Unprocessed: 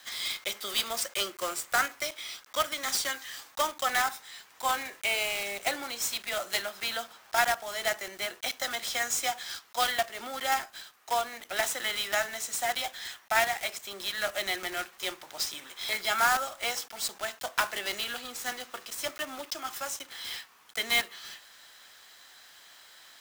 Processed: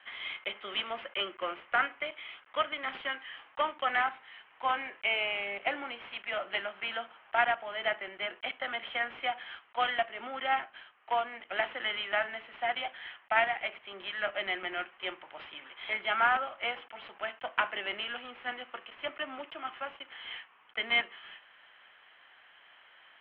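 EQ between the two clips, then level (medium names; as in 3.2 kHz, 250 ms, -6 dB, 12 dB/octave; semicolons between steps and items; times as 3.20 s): Chebyshev low-pass 3.1 kHz, order 6; dynamic bell 240 Hz, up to +5 dB, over -50 dBFS, Q 0.88; bass shelf 380 Hz -8.5 dB; 0.0 dB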